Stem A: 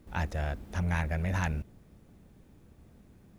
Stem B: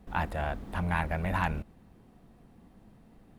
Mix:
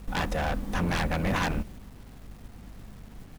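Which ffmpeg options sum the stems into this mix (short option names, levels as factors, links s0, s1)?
-filter_complex "[0:a]alimiter=level_in=1.58:limit=0.0631:level=0:latency=1,volume=0.631,volume=1.12[s0];[1:a]lowshelf=f=65:g=12,aeval=exprs='0.0531*(abs(mod(val(0)/0.0531+3,4)-2)-1)':c=same,adelay=3.9,volume=0.841,asplit=2[s1][s2];[s2]apad=whole_len=149324[s3];[s0][s3]sidechaingate=range=0.0224:threshold=0.00398:ratio=16:detection=peak[s4];[s4][s1]amix=inputs=2:normalize=0,acontrast=41,acrusher=bits=8:mix=0:aa=0.000001,aeval=exprs='val(0)+0.00398*(sin(2*PI*50*n/s)+sin(2*PI*2*50*n/s)/2+sin(2*PI*3*50*n/s)/3+sin(2*PI*4*50*n/s)/4+sin(2*PI*5*50*n/s)/5)':c=same"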